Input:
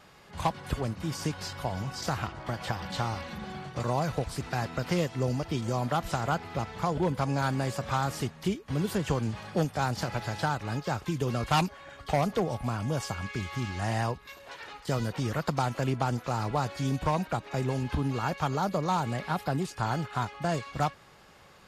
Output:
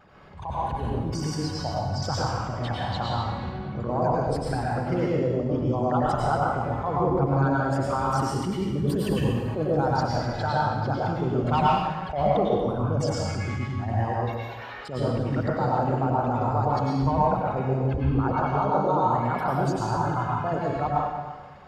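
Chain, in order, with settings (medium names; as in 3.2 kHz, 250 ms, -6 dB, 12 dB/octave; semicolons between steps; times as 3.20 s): resonances exaggerated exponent 2; plate-style reverb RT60 1.3 s, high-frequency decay 0.95×, pre-delay 85 ms, DRR -5 dB; attacks held to a fixed rise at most 110 dB/s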